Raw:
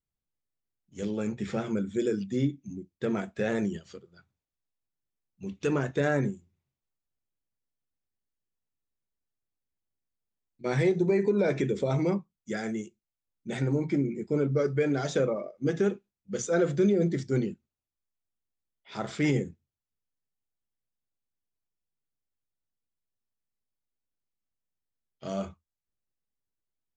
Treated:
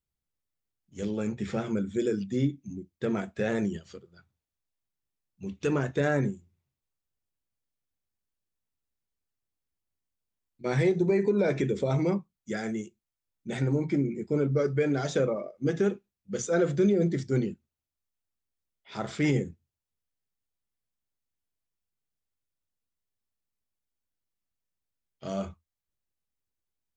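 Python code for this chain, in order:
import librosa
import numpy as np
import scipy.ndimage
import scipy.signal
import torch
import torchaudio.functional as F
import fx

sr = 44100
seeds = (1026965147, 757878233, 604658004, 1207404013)

y = fx.peak_eq(x, sr, hz=71.0, db=4.5, octaves=1.1)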